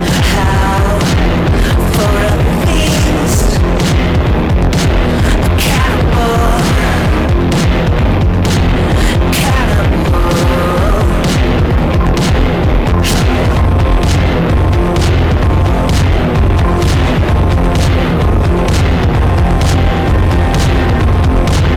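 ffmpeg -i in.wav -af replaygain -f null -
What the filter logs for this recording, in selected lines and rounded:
track_gain = -3.4 dB
track_peak = 0.478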